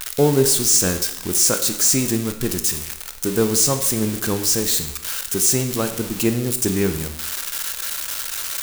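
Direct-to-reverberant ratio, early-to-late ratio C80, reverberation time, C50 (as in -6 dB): 7.0 dB, 12.5 dB, 0.90 s, 10.0 dB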